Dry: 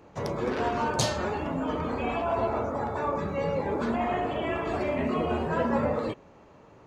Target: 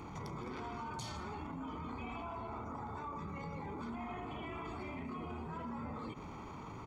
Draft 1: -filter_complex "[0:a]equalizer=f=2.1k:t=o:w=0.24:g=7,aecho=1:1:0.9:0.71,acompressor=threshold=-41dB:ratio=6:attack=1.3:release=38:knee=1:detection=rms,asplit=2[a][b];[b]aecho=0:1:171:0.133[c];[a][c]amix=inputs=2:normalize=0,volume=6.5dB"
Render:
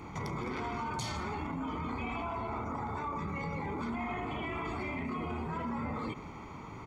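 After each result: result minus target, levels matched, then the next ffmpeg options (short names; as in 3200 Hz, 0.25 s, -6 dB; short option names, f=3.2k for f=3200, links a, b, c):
compressor: peak gain reduction -6.5 dB; 2000 Hz band +2.5 dB
-filter_complex "[0:a]equalizer=f=2.1k:t=o:w=0.24:g=7,aecho=1:1:0.9:0.71,acompressor=threshold=-49dB:ratio=6:attack=1.3:release=38:knee=1:detection=rms,asplit=2[a][b];[b]aecho=0:1:171:0.133[c];[a][c]amix=inputs=2:normalize=0,volume=6.5dB"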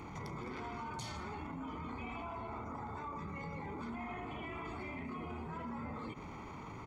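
2000 Hz band +2.5 dB
-filter_complex "[0:a]aecho=1:1:0.9:0.71,acompressor=threshold=-49dB:ratio=6:attack=1.3:release=38:knee=1:detection=rms,asplit=2[a][b];[b]aecho=0:1:171:0.133[c];[a][c]amix=inputs=2:normalize=0,volume=6.5dB"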